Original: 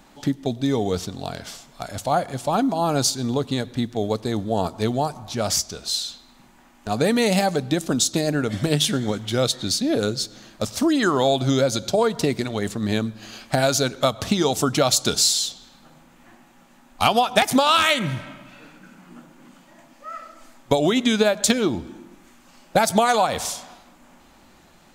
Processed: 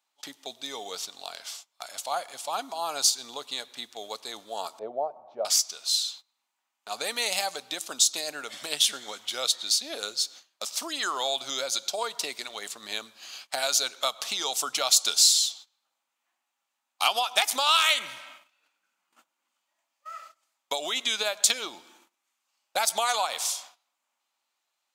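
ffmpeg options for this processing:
-filter_complex "[0:a]asettb=1/sr,asplit=3[a][b][c];[a]atrim=end=4.794[d];[b]atrim=start=4.79:end=5.45,asetpts=PTS-STARTPTS,afade=t=in:d=0.004:c=qsin,afade=t=out:st=0.656:d=0.004:c=qsin,lowpass=f=590:t=q:w=3.5[e];[c]atrim=start=5.446[f];[d][e]acrossfade=d=0.004:c1=hsin:c2=qsin[g];[g][f]acrossfade=d=0.004:c1=qsin:c2=hsin,agate=range=-21dB:threshold=-41dB:ratio=16:detection=peak,highpass=1.2k,equalizer=f=1.7k:w=2:g=-7"

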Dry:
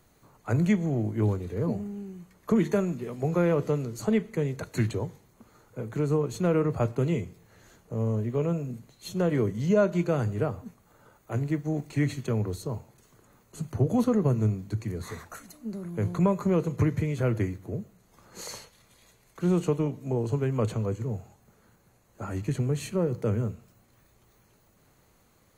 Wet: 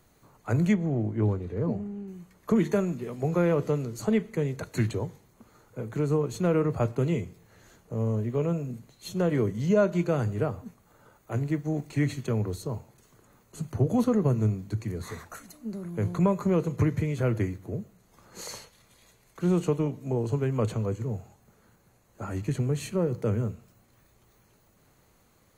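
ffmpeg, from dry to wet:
-filter_complex "[0:a]asettb=1/sr,asplit=3[a][b][c];[a]atrim=end=0.744[d];[b]atrim=start=0.74:end=2.08,asetpts=PTS-STARTPTS,afade=t=in:d=0.004:c=qsin,afade=t=out:st=1.336:d=0.004:c=qsin,lowpass=f=2.2k:p=1[e];[c]atrim=start=2.076[f];[d][e]acrossfade=d=0.004:c1=hsin:c2=qsin[g];[g][f]acrossfade=d=0.004:c1=qsin:c2=hsin"

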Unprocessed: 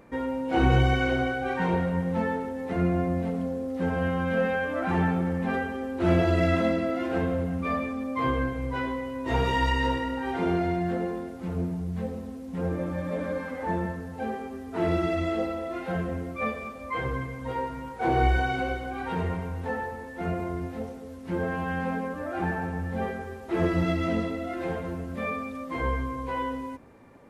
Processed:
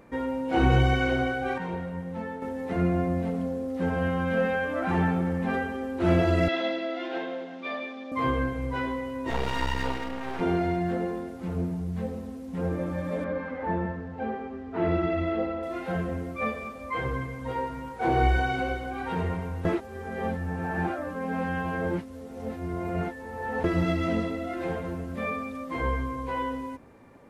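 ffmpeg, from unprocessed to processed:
-filter_complex "[0:a]asettb=1/sr,asplit=3[a][b][c];[a]atrim=end=6.484[d];[b]atrim=start=6.48:end=8.12,asetpts=PTS-STARTPTS,afade=t=in:d=0.004:c=qsin,afade=t=out:st=1.636:d=0.004:c=qsin,highpass=f=330:w=0.5412,highpass=f=330:w=1.3066,equalizer=f=460:t=q:w=4:g=-9,equalizer=f=1.2k:t=q:w=4:g=-8,equalizer=f=3.5k:t=q:w=4:g=9,lowpass=f=5.5k:w=0.5412,lowpass=f=5.5k:w=1.3066[e];[c]atrim=start=8.116[f];[d][e]acrossfade=d=0.004:c1=hsin:c2=qsin[g];[g][f]acrossfade=d=0.004:c1=qsin:c2=hsin,asettb=1/sr,asplit=3[h][i][j];[h]atrim=end=9.304[k];[i]atrim=start=9.3:end=10.41,asetpts=PTS-STARTPTS,afade=t=in:d=0.004:c=qsin,afade=t=out:st=1.106:d=0.004:c=qsin,aeval=exprs='max(val(0),0)':c=same[l];[j]atrim=start=10.406[m];[k][l]acrossfade=d=0.004:c1=hsin:c2=qsin[n];[n][m]acrossfade=d=0.004:c1=qsin:c2=hsin,asettb=1/sr,asplit=3[o][p][q];[o]atrim=end=13.244[r];[p]atrim=start=13.24:end=15.63,asetpts=PTS-STARTPTS,afade=t=in:d=0.004:c=qsin,afade=t=out:st=2.386:d=0.004:c=qsin,lowpass=2.8k[s];[q]atrim=start=15.626[t];[r][s]acrossfade=d=0.004:c1=hsin:c2=qsin[u];[u][t]acrossfade=d=0.004:c1=qsin:c2=hsin,asplit=5[v][w][x][y][z];[v]atrim=end=1.582[aa];[w]atrim=start=1.578:end=2.422,asetpts=PTS-STARTPTS,volume=-7.5dB[ab];[x]atrim=start=2.418:end=19.652[ac];[y]atrim=start=19.648:end=23.642,asetpts=PTS-STARTPTS,areverse[ad];[z]atrim=start=23.638[ae];[aa][ab]acrossfade=d=0.004:c1=hsin:c2=hsin[af];[af][ac]acrossfade=d=0.004:c1=hsin:c2=hsin[ag];[ag][ad]acrossfade=d=0.004:c1=hsin:c2=hsin[ah];[ah][ae]acrossfade=d=0.004:c1=hsin:c2=hsin"

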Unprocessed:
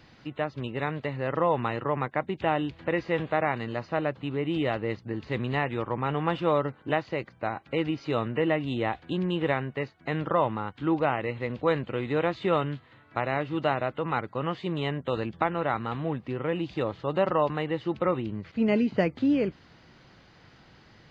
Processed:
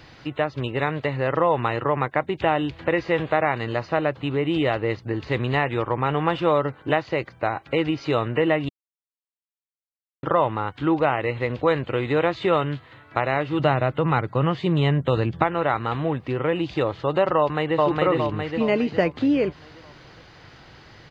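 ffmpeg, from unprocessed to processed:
-filter_complex "[0:a]asettb=1/sr,asplit=3[a][b][c];[a]atrim=end=13.594[d];[b]atrim=start=13.59:end=15.44,asetpts=PTS-STARTPTS,afade=t=in:d=0.004:c=qsin,afade=t=out:st=1.846:d=0.004:c=qsin,equalizer=f=140:t=o:w=1.7:g=9[e];[c]atrim=start=15.436[f];[d][e]acrossfade=d=0.004:c1=hsin:c2=qsin[g];[g][f]acrossfade=d=0.004:c1=qsin:c2=hsin,asplit=2[h][i];[i]afade=t=in:st=17.37:d=0.01,afade=t=out:st=17.85:d=0.01,aecho=0:1:410|820|1230|1640|2050|2460:1|0.45|0.2025|0.091125|0.0410062|0.0184528[j];[h][j]amix=inputs=2:normalize=0,asplit=3[k][l][m];[k]atrim=end=8.69,asetpts=PTS-STARTPTS,afade=t=out:st=8.686:d=0.004:c=hsin[n];[l]atrim=start=8.69:end=10.23,asetpts=PTS-STARTPTS,volume=0[o];[m]atrim=start=10.23,asetpts=PTS-STARTPTS,afade=t=in:d=0.004:c=hsin[p];[n][o][p]concat=n=3:v=0:a=1,equalizer=f=210:w=2.5:g=-7.5,acompressor=threshold=-30dB:ratio=1.5,volume=8.5dB"

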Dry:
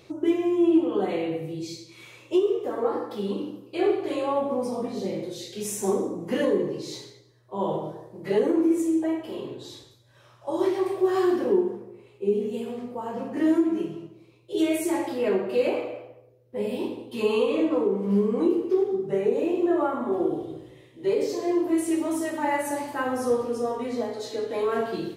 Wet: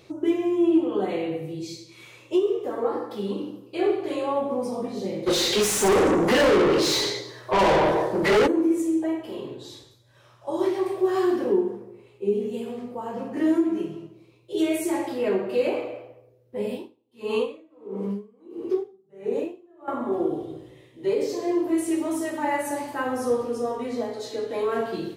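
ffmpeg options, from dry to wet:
-filter_complex "[0:a]asplit=3[a][b][c];[a]afade=t=out:st=5.26:d=0.02[d];[b]asplit=2[e][f];[f]highpass=f=720:p=1,volume=33dB,asoftclip=type=tanh:threshold=-12dB[g];[e][g]amix=inputs=2:normalize=0,lowpass=f=3.7k:p=1,volume=-6dB,afade=t=in:st=5.26:d=0.02,afade=t=out:st=8.46:d=0.02[h];[c]afade=t=in:st=8.46:d=0.02[i];[d][h][i]amix=inputs=3:normalize=0,asettb=1/sr,asplit=3[j][k][l];[j]atrim=end=16.704[m];[k]atrim=start=16.7:end=19.88,asetpts=PTS-STARTPTS,afade=t=in:d=0.004:c=qsin,afade=t=out:st=3.176:d=0.004:c=qsin,aeval=exprs='val(0)*pow(10,-33*(0.5-0.5*cos(2*PI*1.5*n/s))/20)':c=same[n];[l]atrim=start=19.876[o];[m][n]acrossfade=d=0.004:c1=hsin:c2=qsin[p];[p][o]acrossfade=d=0.004:c1=qsin:c2=hsin"

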